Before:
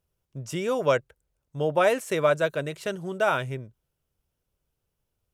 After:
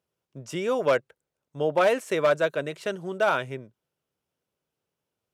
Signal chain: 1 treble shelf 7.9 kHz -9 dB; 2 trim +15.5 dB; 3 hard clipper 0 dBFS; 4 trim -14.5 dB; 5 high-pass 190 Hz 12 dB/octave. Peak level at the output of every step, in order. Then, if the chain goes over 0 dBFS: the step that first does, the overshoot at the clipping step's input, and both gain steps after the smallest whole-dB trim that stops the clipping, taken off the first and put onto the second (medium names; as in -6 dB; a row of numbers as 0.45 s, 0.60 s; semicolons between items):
-9.5 dBFS, +6.0 dBFS, 0.0 dBFS, -14.5 dBFS, -10.5 dBFS; step 2, 6.0 dB; step 2 +9.5 dB, step 4 -8.5 dB